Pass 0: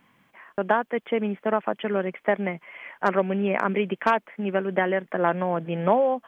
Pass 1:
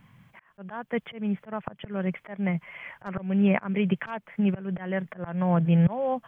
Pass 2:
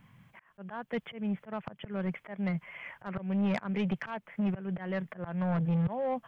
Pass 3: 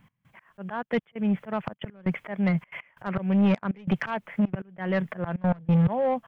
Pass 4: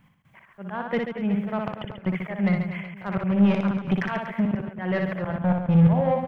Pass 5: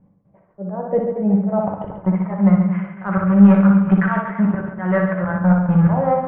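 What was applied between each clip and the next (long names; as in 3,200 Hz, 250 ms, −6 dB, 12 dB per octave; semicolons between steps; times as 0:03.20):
volume swells 282 ms; low shelf with overshoot 200 Hz +13.5 dB, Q 1.5
soft clipping −21.5 dBFS, distortion −11 dB; level −3 dB
automatic gain control gain up to 8 dB; gate pattern "x..xxxxxxx." 182 BPM −24 dB
reverse bouncing-ball delay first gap 60 ms, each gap 1.3×, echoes 5
low-pass filter sweep 520 Hz → 1,400 Hz, 0:00.53–0:03.13; convolution reverb RT60 0.50 s, pre-delay 5 ms, DRR 3.5 dB; level +1.5 dB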